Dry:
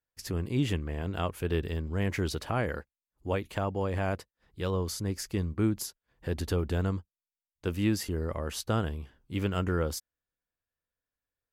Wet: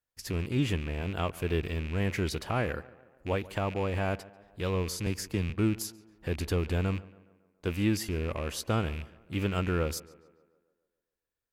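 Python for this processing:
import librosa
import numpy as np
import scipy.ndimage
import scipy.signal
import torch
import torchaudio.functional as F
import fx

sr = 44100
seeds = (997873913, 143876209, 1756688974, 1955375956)

p1 = fx.rattle_buzz(x, sr, strikes_db=-35.0, level_db=-31.0)
p2 = p1 + fx.echo_tape(p1, sr, ms=141, feedback_pct=59, wet_db=-18.0, lp_hz=2500.0, drive_db=19.0, wow_cents=30, dry=0)
y = fx.band_squash(p2, sr, depth_pct=40, at=(5.06, 5.5))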